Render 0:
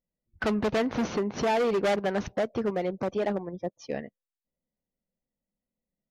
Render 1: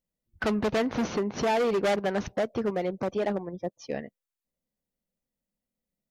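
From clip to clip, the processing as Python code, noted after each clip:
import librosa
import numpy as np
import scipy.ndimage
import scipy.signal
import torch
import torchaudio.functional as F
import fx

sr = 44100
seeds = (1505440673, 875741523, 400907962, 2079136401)

y = fx.high_shelf(x, sr, hz=7400.0, db=3.5)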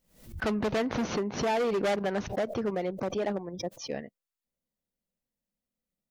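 y = fx.pre_swell(x, sr, db_per_s=110.0)
y = y * 10.0 ** (-2.5 / 20.0)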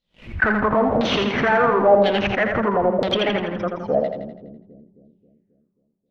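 y = fx.leveller(x, sr, passes=3)
y = fx.filter_lfo_lowpass(y, sr, shape='saw_down', hz=0.99, low_hz=580.0, high_hz=4000.0, q=5.2)
y = fx.echo_split(y, sr, split_hz=340.0, low_ms=268, high_ms=83, feedback_pct=52, wet_db=-5)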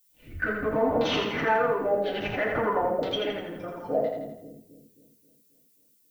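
y = fx.rotary(x, sr, hz=0.65)
y = fx.dmg_noise_colour(y, sr, seeds[0], colour='violet', level_db=-59.0)
y = fx.rev_fdn(y, sr, rt60_s=0.31, lf_ratio=0.75, hf_ratio=0.75, size_ms=20.0, drr_db=-2.5)
y = y * 10.0 ** (-9.0 / 20.0)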